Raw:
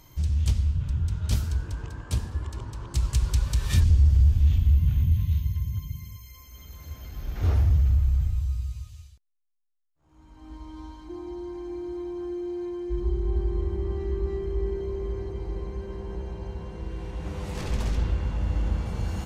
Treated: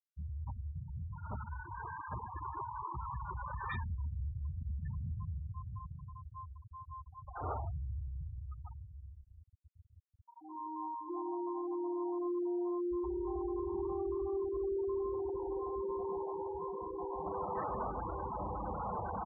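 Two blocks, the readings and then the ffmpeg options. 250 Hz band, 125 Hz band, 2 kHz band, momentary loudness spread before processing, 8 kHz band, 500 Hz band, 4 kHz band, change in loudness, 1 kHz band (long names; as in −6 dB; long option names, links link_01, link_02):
−4.5 dB, −18.5 dB, −6.0 dB, 18 LU, below −35 dB, −2.0 dB, below −25 dB, −12.5 dB, +6.5 dB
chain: -filter_complex "[0:a]asplit=2[link_01][link_02];[link_02]alimiter=limit=-20dB:level=0:latency=1:release=126,volume=1.5dB[link_03];[link_01][link_03]amix=inputs=2:normalize=0,bandpass=frequency=1000:width_type=q:width=1.7:csg=0,aecho=1:1:1151|2302|3453|4604|5755|6906:0.266|0.141|0.0747|0.0396|0.021|0.0111,asoftclip=type=tanh:threshold=-35dB,afftfilt=real='re*gte(hypot(re,im),0.0178)':imag='im*gte(hypot(re,im),0.0178)':win_size=1024:overlap=0.75,volume=4.5dB"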